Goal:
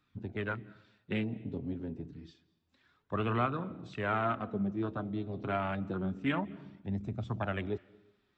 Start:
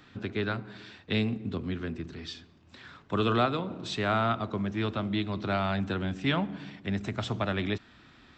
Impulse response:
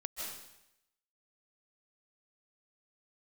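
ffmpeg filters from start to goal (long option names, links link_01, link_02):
-filter_complex "[0:a]afwtdn=0.02,flanger=delay=0.8:depth=6.6:regen=45:speed=0.28:shape=sinusoidal,asplit=2[link_01][link_02];[1:a]atrim=start_sample=2205,adelay=24[link_03];[link_02][link_03]afir=irnorm=-1:irlink=0,volume=-21.5dB[link_04];[link_01][link_04]amix=inputs=2:normalize=0"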